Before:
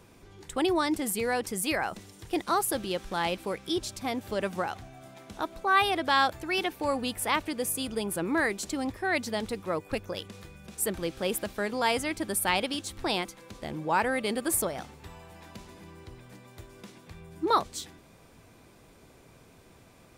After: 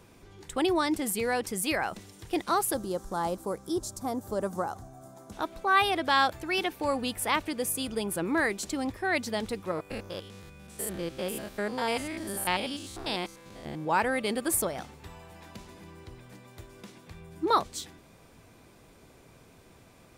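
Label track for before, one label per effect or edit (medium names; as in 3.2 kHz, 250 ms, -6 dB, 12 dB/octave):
2.740000	5.320000	FFT filter 1.2 kHz 0 dB, 2.5 kHz -20 dB, 6.9 kHz +2 dB
9.710000	13.860000	spectrogram pixelated in time every 100 ms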